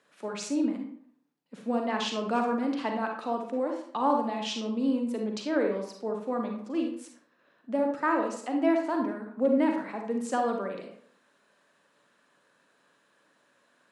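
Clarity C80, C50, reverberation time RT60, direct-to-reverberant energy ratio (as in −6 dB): 9.5 dB, 4.0 dB, 0.60 s, 2.0 dB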